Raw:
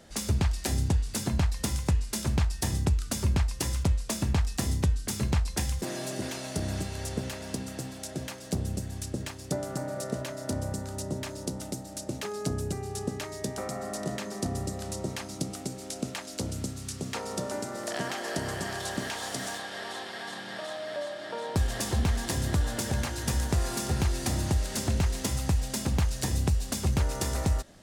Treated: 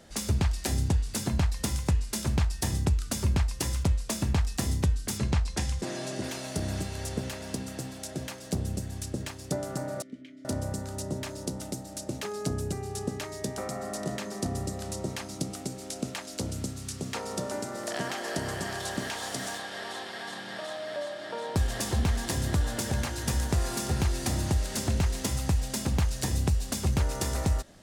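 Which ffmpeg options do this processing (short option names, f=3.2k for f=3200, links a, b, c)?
-filter_complex "[0:a]asettb=1/sr,asplit=3[a][b][c];[a]atrim=end=5.184[d];[b]atrim=start=5.18:end=6.24,asetpts=PTS-STARTPTS,afade=t=in:d=0.004:c=qsin,afade=t=out:st=1.056:d=0.004:c=qsin,lowpass=8.3k[e];[c]atrim=start=6.236[f];[d][e]acrossfade=d=0.004:c1=hsin:c2=qsin[g];[g][f]acrossfade=d=0.004:c1=qsin:c2=hsin,asettb=1/sr,asplit=3[h][i][j];[h]atrim=end=10.024[k];[i]atrim=start=10.02:end=10.45,asetpts=PTS-STARTPTS,afade=t=in:d=0.004:c=qsin,afade=t=out:st=0.426:d=0.004:c=qsin,asplit=3[l][m][n];[l]bandpass=f=270:t=q:w=8,volume=0dB[o];[m]bandpass=f=2.29k:t=q:w=8,volume=-6dB[p];[n]bandpass=f=3.01k:t=q:w=8,volume=-9dB[q];[o][p][q]amix=inputs=3:normalize=0[r];[j]atrim=start=10.446[s];[k][r]acrossfade=d=0.004:c1=hsin:c2=qsin[t];[t][s]acrossfade=d=0.004:c1=qsin:c2=hsin"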